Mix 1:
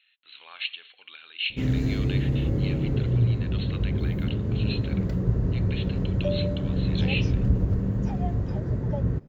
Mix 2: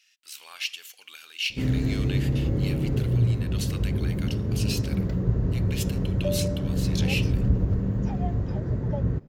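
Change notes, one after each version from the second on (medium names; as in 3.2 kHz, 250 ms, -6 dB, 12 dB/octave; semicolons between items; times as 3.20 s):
speech: remove brick-wall FIR low-pass 4.3 kHz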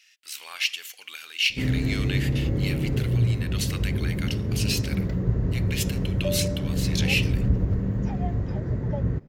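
speech +4.5 dB; master: add peaking EQ 2 kHz +4.5 dB 0.44 oct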